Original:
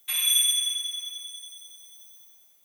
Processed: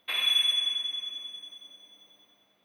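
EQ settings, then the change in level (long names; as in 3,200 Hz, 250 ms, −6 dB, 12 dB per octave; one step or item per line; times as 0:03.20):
high-frequency loss of the air 390 metres
low-shelf EQ 370 Hz +3.5 dB
+9.0 dB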